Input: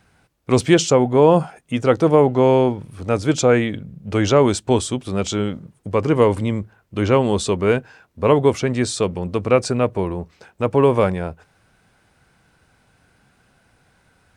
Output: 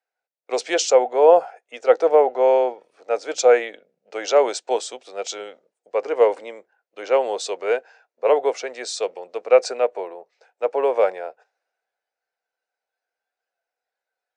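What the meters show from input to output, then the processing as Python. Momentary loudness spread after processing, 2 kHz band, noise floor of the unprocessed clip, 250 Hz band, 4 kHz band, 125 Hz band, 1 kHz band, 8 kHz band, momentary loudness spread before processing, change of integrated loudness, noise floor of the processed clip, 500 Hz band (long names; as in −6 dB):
18 LU, −3.0 dB, −60 dBFS, −17.0 dB, −3.0 dB, below −40 dB, −1.0 dB, −2.5 dB, 11 LU, −2.0 dB, below −85 dBFS, −0.5 dB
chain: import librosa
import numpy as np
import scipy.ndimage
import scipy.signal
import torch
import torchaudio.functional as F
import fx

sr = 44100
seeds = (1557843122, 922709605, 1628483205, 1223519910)

y = fx.noise_reduce_blind(x, sr, reduce_db=8)
y = fx.cabinet(y, sr, low_hz=480.0, low_slope=24, high_hz=7100.0, hz=(490.0, 720.0, 1100.0, 3200.0), db=(5, 6, -7, -5))
y = fx.band_widen(y, sr, depth_pct=40)
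y = y * 10.0 ** (-2.0 / 20.0)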